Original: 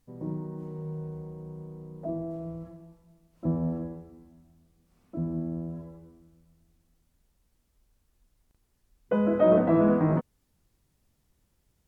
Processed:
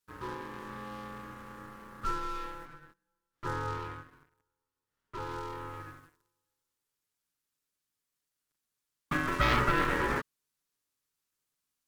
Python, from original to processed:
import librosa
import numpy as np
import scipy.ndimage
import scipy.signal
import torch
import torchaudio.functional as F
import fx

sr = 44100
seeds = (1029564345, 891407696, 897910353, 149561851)

y = fx.high_shelf(x, sr, hz=2100.0, db=-8.5, at=(2.65, 5.18))
y = fx.leveller(y, sr, passes=3)
y = scipy.signal.sosfilt(scipy.signal.butter(2, 720.0, 'highpass', fs=sr, output='sos'), y)
y = fx.peak_eq(y, sr, hz=1600.0, db=-5.0, octaves=1.5)
y = y + 0.99 * np.pad(y, (int(7.1 * sr / 1000.0), 0))[:len(y)]
y = y * np.sin(2.0 * np.pi * 680.0 * np.arange(len(y)) / sr)